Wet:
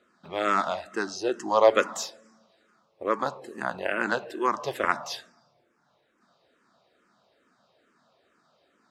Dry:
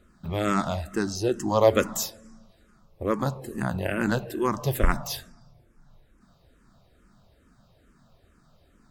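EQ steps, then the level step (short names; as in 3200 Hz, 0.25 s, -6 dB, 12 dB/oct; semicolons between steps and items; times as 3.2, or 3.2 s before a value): dynamic EQ 1300 Hz, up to +4 dB, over -36 dBFS, Q 0.79; BPF 390–5800 Hz; 0.0 dB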